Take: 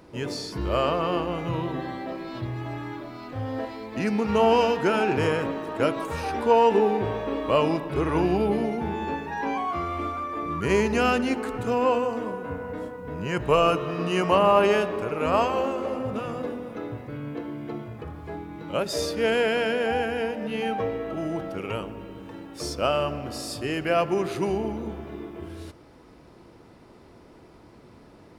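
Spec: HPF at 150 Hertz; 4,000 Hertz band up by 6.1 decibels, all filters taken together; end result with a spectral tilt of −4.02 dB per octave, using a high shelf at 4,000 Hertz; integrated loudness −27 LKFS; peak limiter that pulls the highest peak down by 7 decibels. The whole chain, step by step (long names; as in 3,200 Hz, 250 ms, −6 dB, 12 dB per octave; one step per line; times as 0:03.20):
high-pass filter 150 Hz
high-shelf EQ 4,000 Hz +7.5 dB
parametric band 4,000 Hz +4.5 dB
level −0.5 dB
brickwall limiter −13.5 dBFS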